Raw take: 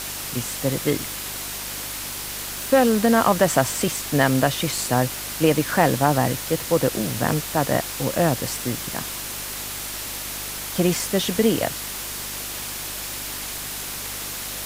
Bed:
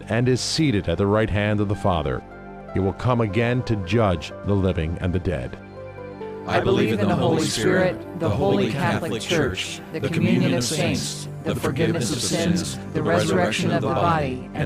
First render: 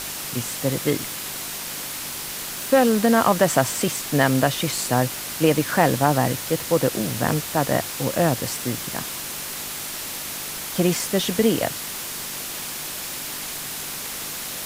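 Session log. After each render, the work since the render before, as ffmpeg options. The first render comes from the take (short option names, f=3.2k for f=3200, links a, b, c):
-af "bandreject=f=50:t=h:w=4,bandreject=f=100:t=h:w=4"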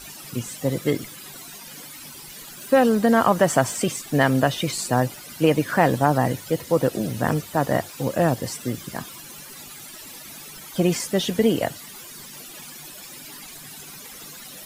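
-af "afftdn=nr=15:nf=-32"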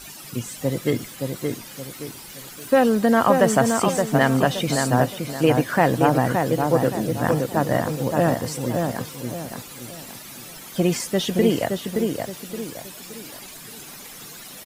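-filter_complex "[0:a]asplit=2[a][b];[b]adelay=571,lowpass=f=2k:p=1,volume=-4dB,asplit=2[c][d];[d]adelay=571,lowpass=f=2k:p=1,volume=0.37,asplit=2[e][f];[f]adelay=571,lowpass=f=2k:p=1,volume=0.37,asplit=2[g][h];[h]adelay=571,lowpass=f=2k:p=1,volume=0.37,asplit=2[i][j];[j]adelay=571,lowpass=f=2k:p=1,volume=0.37[k];[a][c][e][g][i][k]amix=inputs=6:normalize=0"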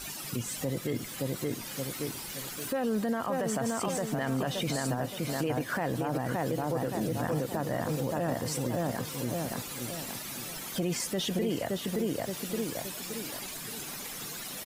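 -af "acompressor=threshold=-29dB:ratio=2,alimiter=limit=-22dB:level=0:latency=1:release=17"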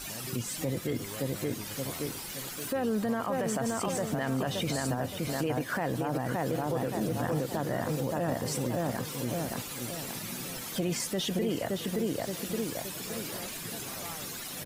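-filter_complex "[1:a]volume=-25dB[a];[0:a][a]amix=inputs=2:normalize=0"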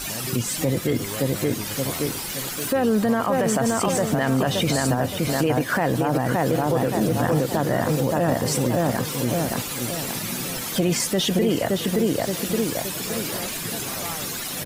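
-af "volume=9.5dB"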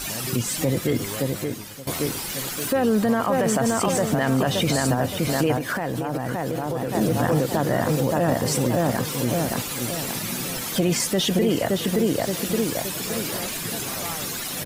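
-filter_complex "[0:a]asettb=1/sr,asplit=3[a][b][c];[a]atrim=end=5.564[d];[b]atrim=start=5.56:end=6.95,asetpts=PTS-STARTPTS,afade=t=in:d=0.004:c=qsin,afade=t=out:st=1.386:d=0.004:c=qsin,acompressor=threshold=-22dB:ratio=6:attack=3.2:release=140:knee=1:detection=peak[e];[c]atrim=start=6.946[f];[d][e]acrossfade=d=0.004:c1=hsin:c2=qsin[g];[g][f]acrossfade=d=0.004:c1=qsin:c2=hsin,asplit=2[h][i];[h]atrim=end=1.87,asetpts=PTS-STARTPTS,afade=t=out:st=1.08:d=0.79:silence=0.149624[j];[i]atrim=start=1.87,asetpts=PTS-STARTPTS,afade=t=in:d=0.004:c=hsin:silence=0.149624[k];[j][k]concat=n=2:v=0:a=1"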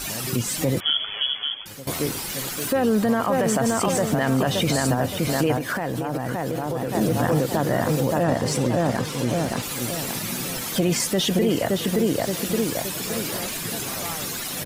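-filter_complex "[0:a]asettb=1/sr,asplit=3[a][b][c];[a]atrim=end=0.804[d];[b]atrim=start=0.8:end=1.66,asetpts=PTS-STARTPTS,afade=t=in:d=0.004:c=qsin,afade=t=out:st=0.856:d=0.004:c=qsin,lowpass=f=3k:t=q:w=0.5098,lowpass=f=3k:t=q:w=0.6013,lowpass=f=3k:t=q:w=0.9,lowpass=f=3k:t=q:w=2.563,afreqshift=-3500[e];[c]atrim=start=1.656[f];[d][e]acrossfade=d=0.004:c1=hsin:c2=qsin[g];[g][f]acrossfade=d=0.004:c1=qsin:c2=hsin,asettb=1/sr,asplit=3[h][i][j];[h]atrim=end=8.234[k];[i]atrim=start=8.23:end=9.63,asetpts=PTS-STARTPTS,afade=t=in:d=0.004:c=qsin,afade=t=out:st=1.396:d=0.004:c=qsin,adynamicsmooth=sensitivity=6:basefreq=7.4k[l];[j]atrim=start=9.626[m];[k][l]acrossfade=d=0.004:c1=hsin:c2=qsin[n];[n][m]acrossfade=d=0.004:c1=qsin:c2=hsin"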